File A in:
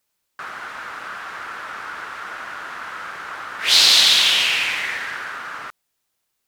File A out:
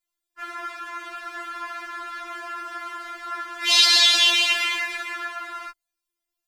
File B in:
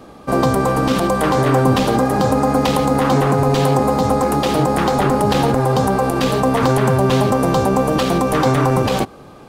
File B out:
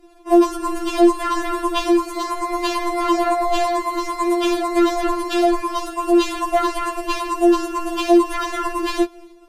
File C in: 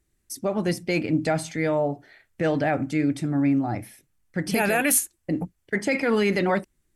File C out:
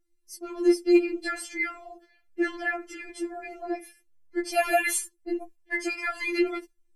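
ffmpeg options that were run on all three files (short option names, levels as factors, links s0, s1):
-filter_complex "[0:a]lowshelf=f=180:g=9.5,bandreject=f=46.82:t=h:w=4,bandreject=f=93.64:t=h:w=4,bandreject=f=140.46:t=h:w=4,acrossover=split=9200[s0][s1];[s1]acompressor=threshold=0.01:ratio=4:attack=1:release=60[s2];[s0][s2]amix=inputs=2:normalize=0,agate=range=0.398:threshold=0.0158:ratio=16:detection=peak,afftfilt=real='re*4*eq(mod(b,16),0)':imag='im*4*eq(mod(b,16),0)':win_size=2048:overlap=0.75"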